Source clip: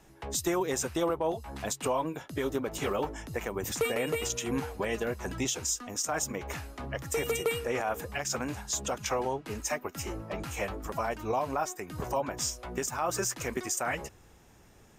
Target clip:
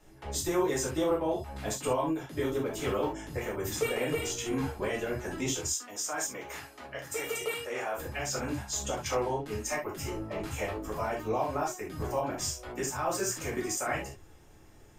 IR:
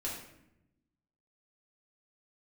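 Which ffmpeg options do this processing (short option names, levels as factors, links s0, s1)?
-filter_complex "[0:a]asettb=1/sr,asplit=3[s0][s1][s2];[s0]atrim=end=5.664[s3];[s1]atrim=start=5.66:end=7.96,asetpts=PTS-STARTPTS,afade=t=in:d=0.004:c=qsin,afade=t=out:st=2.296:d=0.004:c=qsin,highpass=f=610:p=1[s4];[s2]atrim=start=7.956[s5];[s3][s4]acrossfade=d=0.004:c1=hsin:c2=qsin[s6];[s6][s5]acrossfade=d=0.004:c1=qsin:c2=hsin[s7];[1:a]atrim=start_sample=2205,atrim=end_sample=4410,asetrate=52920,aresample=44100[s8];[s7][s8]afir=irnorm=-1:irlink=0"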